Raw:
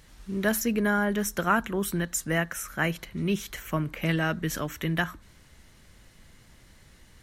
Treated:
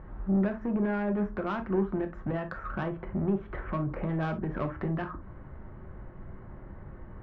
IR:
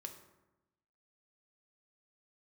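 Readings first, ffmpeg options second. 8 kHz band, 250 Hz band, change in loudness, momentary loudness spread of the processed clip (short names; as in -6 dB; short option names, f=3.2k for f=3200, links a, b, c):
under -40 dB, -1.0 dB, -3.5 dB, 18 LU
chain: -filter_complex "[0:a]lowpass=f=1.3k:w=0.5412,lowpass=f=1.3k:w=1.3066,asplit=2[a][b];[b]acompressor=threshold=-38dB:ratio=6,volume=3dB[c];[a][c]amix=inputs=2:normalize=0,alimiter=limit=-21.5dB:level=0:latency=1:release=184,asoftclip=type=tanh:threshold=-27dB[d];[1:a]atrim=start_sample=2205,atrim=end_sample=3087[e];[d][e]afir=irnorm=-1:irlink=0,volume=8dB"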